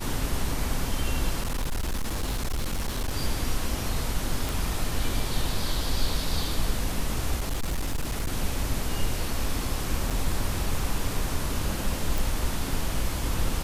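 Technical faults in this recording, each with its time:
1.41–3.15 clipped -24 dBFS
4.49 pop
7.39–8.32 clipped -23.5 dBFS
10.1–10.11 gap 5.7 ms
12.18 pop

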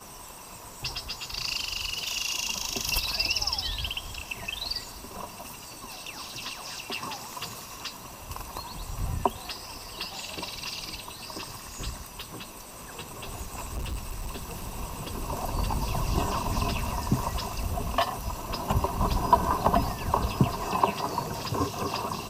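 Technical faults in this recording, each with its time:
13.58–14.73 clipped -29 dBFS

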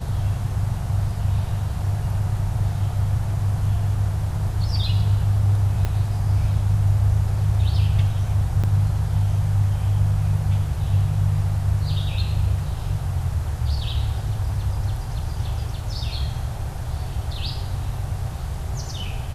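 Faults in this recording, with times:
5.85 pop -12 dBFS
8.63–8.64 gap 6.7 ms

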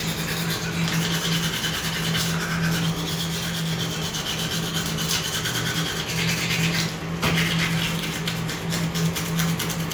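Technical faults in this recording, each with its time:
3.2–3.72 clipped -23.5 dBFS

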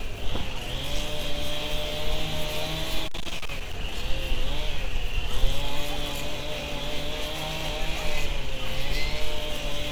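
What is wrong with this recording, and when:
3.05–3.74 clipped -24.5 dBFS

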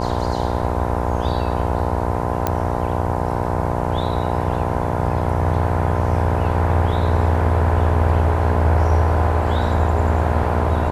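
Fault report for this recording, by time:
buzz 60 Hz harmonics 17 -23 dBFS
2.47 pop -5 dBFS

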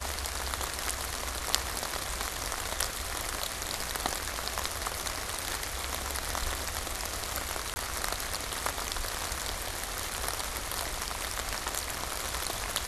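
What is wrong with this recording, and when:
7.74–7.76 gap 20 ms

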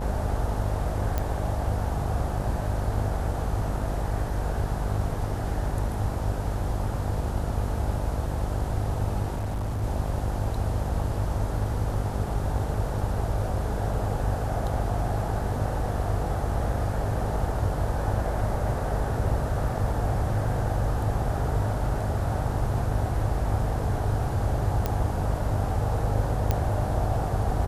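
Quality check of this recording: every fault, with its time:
buzz 50 Hz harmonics 20 -31 dBFS
1.18 pop -13 dBFS
9.34–9.84 clipped -25.5 dBFS
24.86 pop -12 dBFS
26.51 pop -11 dBFS

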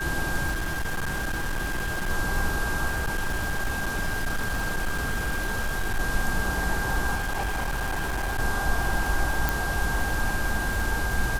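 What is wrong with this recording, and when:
crackle 89/s -29 dBFS
tone 1600 Hz -30 dBFS
0.51–2.1 clipped -24.5 dBFS
2.9–6 clipped -22.5 dBFS
7.15–8.4 clipped -24.5 dBFS
9.49 pop

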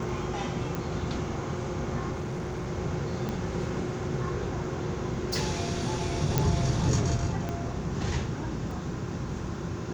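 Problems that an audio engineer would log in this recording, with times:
0.75 pop
2.11–2.67 clipped -29.5 dBFS
3.29 pop -19 dBFS
6.38 pop -9 dBFS
7.49 pop -20 dBFS
8.71 gap 2.5 ms

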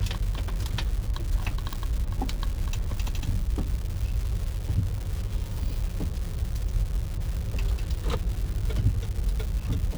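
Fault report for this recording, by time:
crackle 390/s -32 dBFS
1.73 pop

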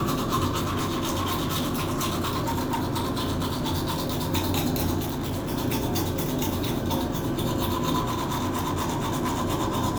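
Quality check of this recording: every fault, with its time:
0.6–4.29 clipped -23 dBFS
4.99–5.52 clipped -26 dBFS
8.05–9.42 clipped -23 dBFS

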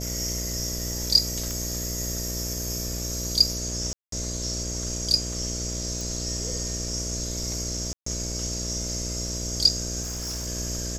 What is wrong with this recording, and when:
buzz 60 Hz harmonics 11 -33 dBFS
1.51 pop
3.93–4.12 gap 0.193 s
6.01 pop
7.93–8.06 gap 0.134 s
10.02–10.48 clipped -28 dBFS

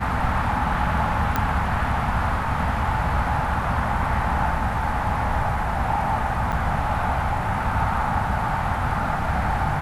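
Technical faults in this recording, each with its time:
1.36 pop -8 dBFS
6.52–6.53 gap 7.6 ms

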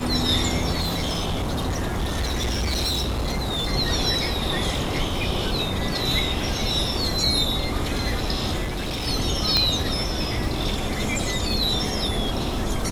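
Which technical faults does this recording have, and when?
crackle 77/s -31 dBFS
0.8–3.68 clipped -21 dBFS
8.64–9.08 clipped -24 dBFS
9.57 pop -5 dBFS

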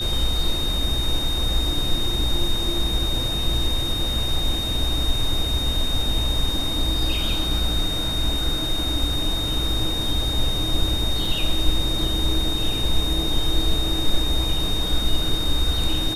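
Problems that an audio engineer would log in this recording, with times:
tone 3700 Hz -25 dBFS
11.25 gap 2.2 ms

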